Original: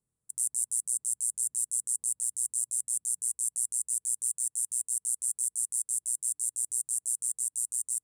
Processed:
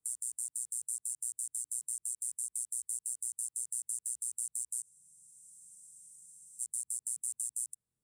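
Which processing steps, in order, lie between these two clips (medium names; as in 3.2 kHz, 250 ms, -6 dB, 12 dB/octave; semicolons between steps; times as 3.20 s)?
reverse the whole clip; spectral freeze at 4.86 s, 1.75 s; three bands compressed up and down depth 40%; trim -7 dB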